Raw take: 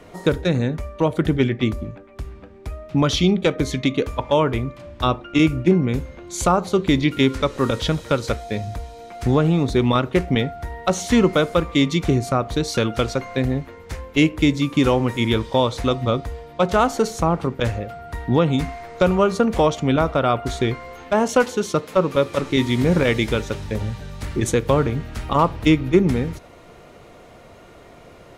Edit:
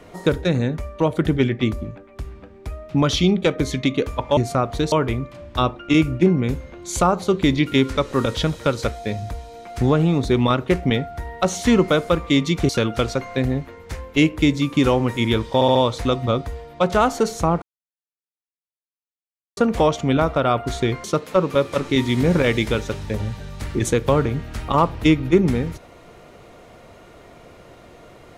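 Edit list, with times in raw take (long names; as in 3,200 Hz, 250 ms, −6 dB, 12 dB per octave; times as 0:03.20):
0:12.14–0:12.69: move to 0:04.37
0:15.54: stutter 0.07 s, 4 plays
0:17.41–0:19.36: silence
0:20.83–0:21.65: remove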